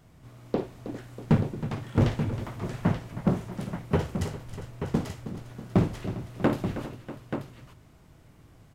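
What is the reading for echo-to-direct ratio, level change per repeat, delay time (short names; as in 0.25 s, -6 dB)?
-5.0 dB, no steady repeat, 55 ms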